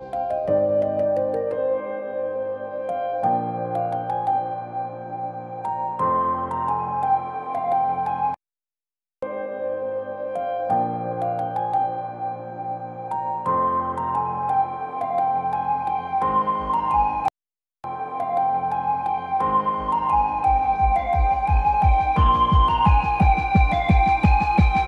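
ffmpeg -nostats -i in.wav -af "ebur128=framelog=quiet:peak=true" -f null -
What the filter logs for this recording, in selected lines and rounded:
Integrated loudness:
  I:         -22.6 LUFS
  Threshold: -32.7 LUFS
Loudness range:
  LRA:         7.2 LU
  Threshold: -43.2 LUFS
  LRA low:   -26.1 LUFS
  LRA high:  -18.9 LUFS
True peak:
  Peak:       -7.1 dBFS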